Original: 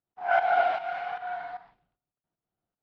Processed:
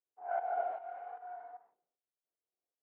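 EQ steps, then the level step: ladder band-pass 530 Hz, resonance 45%; 0.0 dB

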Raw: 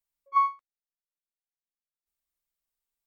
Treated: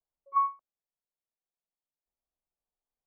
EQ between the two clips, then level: resonant low-pass 770 Hz, resonance Q 1.5; 0.0 dB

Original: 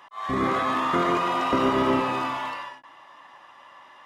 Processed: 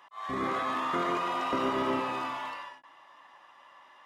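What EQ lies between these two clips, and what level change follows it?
bass shelf 200 Hz -7 dB; -6.0 dB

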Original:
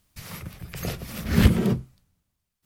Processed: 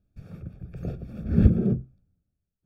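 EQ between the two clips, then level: boxcar filter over 44 samples; 0.0 dB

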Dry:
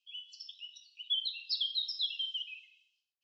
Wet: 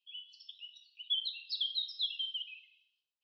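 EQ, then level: resonant low-pass 3.7 kHz, resonance Q 2.2; -7.5 dB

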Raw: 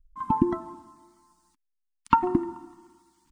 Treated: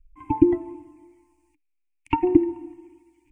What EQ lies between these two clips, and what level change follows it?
FFT filter 120 Hz 0 dB, 210 Hz -29 dB, 300 Hz +8 dB, 540 Hz -12 dB, 820 Hz -4 dB, 1.3 kHz -28 dB, 2.4 kHz +10 dB, 3.8 kHz -23 dB, 8 kHz -12 dB; +5.0 dB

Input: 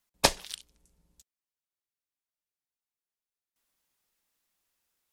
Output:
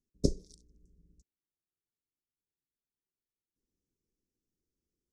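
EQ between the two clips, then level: elliptic band-stop 400–5800 Hz, stop band 40 dB; tape spacing loss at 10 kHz 30 dB; +6.5 dB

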